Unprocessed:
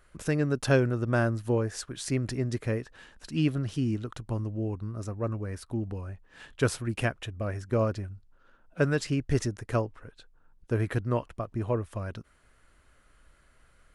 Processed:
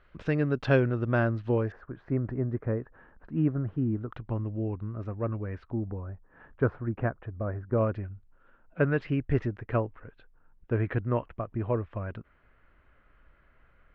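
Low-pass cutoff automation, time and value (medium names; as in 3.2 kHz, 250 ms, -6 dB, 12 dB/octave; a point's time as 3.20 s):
low-pass 24 dB/octave
3.6 kHz
from 1.72 s 1.5 kHz
from 4.12 s 2.7 kHz
from 5.71 s 1.5 kHz
from 7.78 s 2.6 kHz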